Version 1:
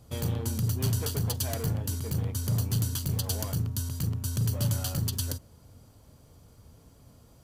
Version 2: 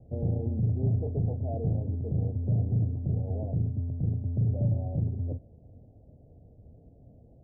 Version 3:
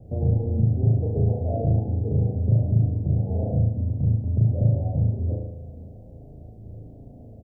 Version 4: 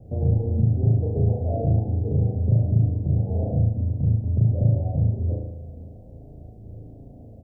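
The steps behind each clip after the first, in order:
steep low-pass 750 Hz 72 dB/octave; trim +1.5 dB
in parallel at +1.5 dB: compression, threshold -35 dBFS, peak gain reduction 12.5 dB; on the sum: doubling 27 ms -11 dB; flutter echo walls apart 6.3 m, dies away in 0.96 s
reverberation RT60 0.40 s, pre-delay 18 ms, DRR 13 dB

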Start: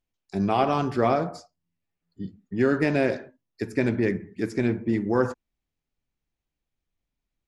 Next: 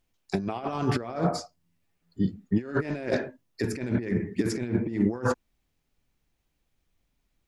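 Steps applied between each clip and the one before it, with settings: compressor with a negative ratio -29 dBFS, ratio -0.5; trim +3 dB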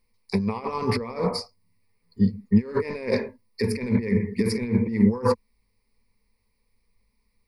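rippled EQ curve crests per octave 0.9, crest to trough 17 dB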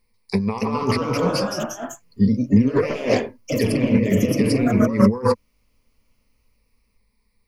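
ever faster or slower copies 317 ms, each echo +2 st, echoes 3; trim +3 dB

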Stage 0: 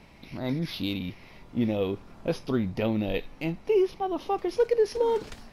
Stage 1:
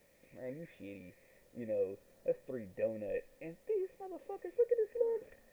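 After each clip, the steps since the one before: cascade formant filter e; low-pass that closes with the level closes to 2 kHz, closed at -29.5 dBFS; word length cut 12-bit, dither triangular; trim -1.5 dB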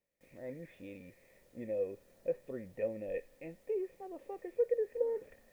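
gate with hold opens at -57 dBFS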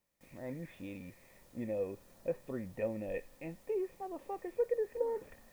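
graphic EQ 500/1000/2000 Hz -9/+6/-5 dB; trim +6.5 dB

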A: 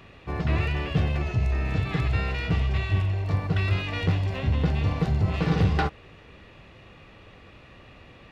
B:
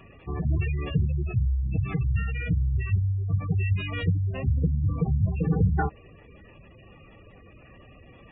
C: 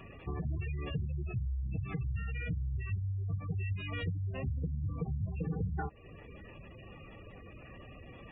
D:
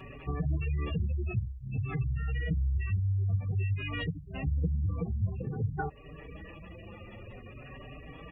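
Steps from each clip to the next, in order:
spectral gate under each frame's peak -15 dB strong
compression 3:1, threshold -36 dBFS, peak gain reduction 14 dB
endless flanger 4.9 ms +0.52 Hz; trim +7 dB

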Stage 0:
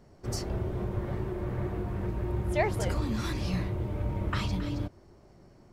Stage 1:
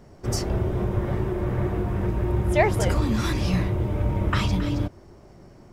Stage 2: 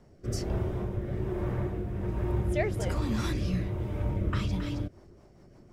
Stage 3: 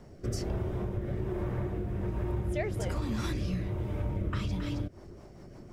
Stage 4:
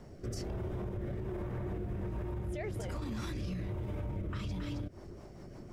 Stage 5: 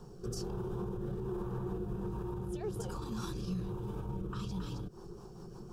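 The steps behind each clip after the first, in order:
band-stop 4.3 kHz, Q 12; trim +7.5 dB
rotary cabinet horn 1.2 Hz, later 6.3 Hz, at 4.47 s; trim -5 dB
compression 2.5:1, threshold -39 dBFS, peak gain reduction 11 dB; trim +6 dB
peak limiter -30.5 dBFS, peak gain reduction 10 dB
static phaser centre 410 Hz, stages 8; trim +3.5 dB

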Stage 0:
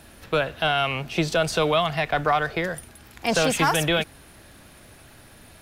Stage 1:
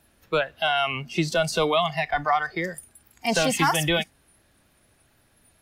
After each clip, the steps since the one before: spectral noise reduction 14 dB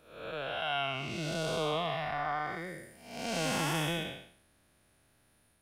spectral blur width 319 ms; trim -4.5 dB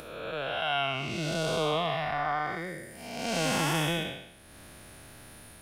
upward compressor, threshold -39 dBFS; trim +4 dB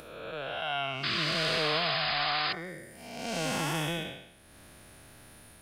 painted sound noise, 1.03–2.53 s, 1–5.1 kHz -28 dBFS; trim -3.5 dB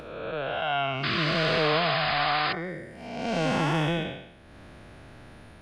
tape spacing loss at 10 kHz 21 dB; trim +8 dB

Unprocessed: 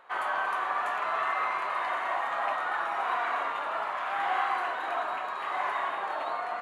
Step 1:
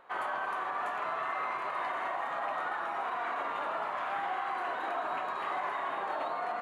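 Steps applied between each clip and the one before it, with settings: bass shelf 490 Hz +10 dB; gain riding 0.5 s; peak limiter -21 dBFS, peak gain reduction 5.5 dB; trim -4.5 dB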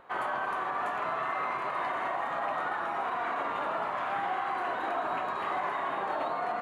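bass shelf 280 Hz +9.5 dB; trim +1.5 dB

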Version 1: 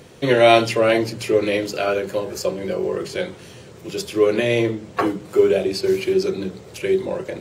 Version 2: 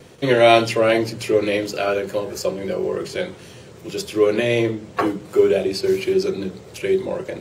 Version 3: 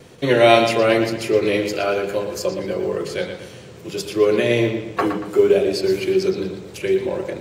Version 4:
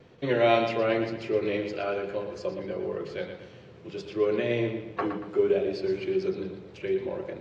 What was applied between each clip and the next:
gate with hold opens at -36 dBFS
bucket-brigade echo 117 ms, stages 4096, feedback 41%, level -8 dB; short-mantissa float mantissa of 6-bit
Gaussian low-pass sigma 1.9 samples; trim -9 dB

